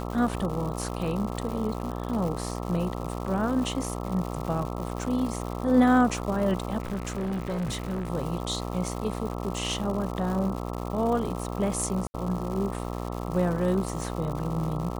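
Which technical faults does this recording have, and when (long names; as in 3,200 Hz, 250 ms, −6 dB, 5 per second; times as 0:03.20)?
mains buzz 60 Hz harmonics 22 −33 dBFS
surface crackle 230 per second −33 dBFS
0:06.80–0:08.09: clipping −26.5 dBFS
0:12.07–0:12.14: drop-out 70 ms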